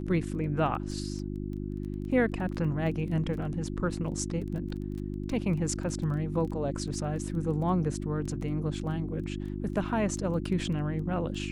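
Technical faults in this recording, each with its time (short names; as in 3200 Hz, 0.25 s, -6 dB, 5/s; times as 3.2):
crackle 13/s -37 dBFS
hum 50 Hz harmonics 7 -35 dBFS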